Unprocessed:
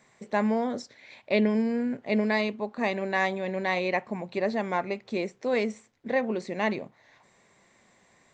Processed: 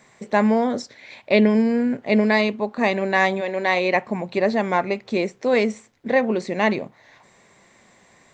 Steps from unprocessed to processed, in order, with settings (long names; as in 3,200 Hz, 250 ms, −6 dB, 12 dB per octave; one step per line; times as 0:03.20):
0:03.40–0:03.94: high-pass filter 410 Hz → 170 Hz
level +7.5 dB